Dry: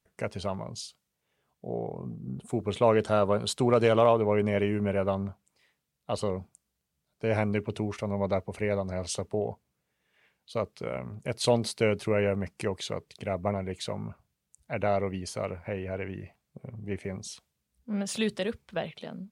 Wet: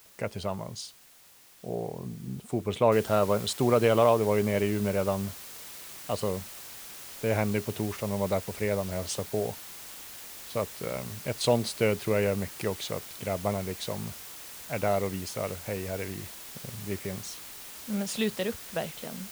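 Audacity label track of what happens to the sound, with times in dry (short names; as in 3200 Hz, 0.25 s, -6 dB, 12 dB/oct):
2.920000	2.920000	noise floor step -56 dB -44 dB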